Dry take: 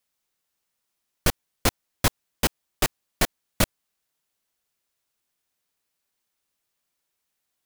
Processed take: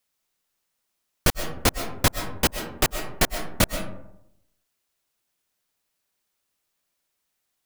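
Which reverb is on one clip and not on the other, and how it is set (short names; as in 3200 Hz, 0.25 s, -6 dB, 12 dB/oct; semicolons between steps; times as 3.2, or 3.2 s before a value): digital reverb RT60 0.81 s, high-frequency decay 0.4×, pre-delay 85 ms, DRR 7.5 dB; gain +1.5 dB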